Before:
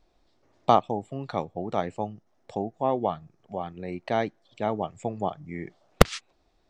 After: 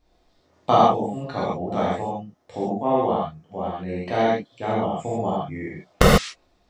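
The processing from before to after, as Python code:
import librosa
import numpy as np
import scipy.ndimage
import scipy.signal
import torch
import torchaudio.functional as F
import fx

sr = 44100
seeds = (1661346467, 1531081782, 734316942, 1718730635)

y = fx.rev_gated(x, sr, seeds[0], gate_ms=170, shape='flat', drr_db=-8.0)
y = y * 10.0 ** (-3.0 / 20.0)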